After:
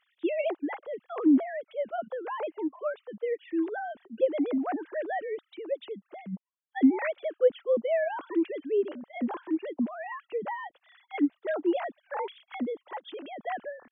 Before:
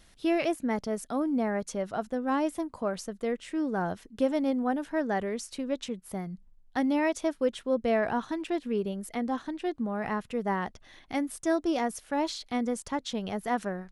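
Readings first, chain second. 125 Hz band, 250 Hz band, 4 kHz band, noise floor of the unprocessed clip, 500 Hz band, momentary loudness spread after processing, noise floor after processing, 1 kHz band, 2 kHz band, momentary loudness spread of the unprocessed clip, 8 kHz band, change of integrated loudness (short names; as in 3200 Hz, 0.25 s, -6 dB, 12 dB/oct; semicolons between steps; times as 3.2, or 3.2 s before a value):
under -10 dB, 0.0 dB, -8.0 dB, -59 dBFS, +1.0 dB, 14 LU, -79 dBFS, -3.5 dB, -2.0 dB, 7 LU, under -35 dB, 0.0 dB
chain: sine-wave speech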